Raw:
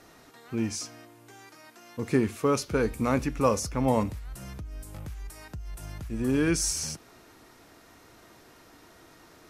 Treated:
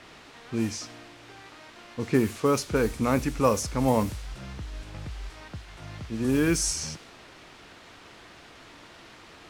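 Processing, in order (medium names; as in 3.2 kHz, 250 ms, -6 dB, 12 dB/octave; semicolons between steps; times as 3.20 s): 5.51–6.25 s: high-pass 67 Hz 24 dB/octave; in parallel at -5 dB: word length cut 6-bit, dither triangular; on the sum: level-controlled noise filter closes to 2.7 kHz, open at -17 dBFS; trim -2.5 dB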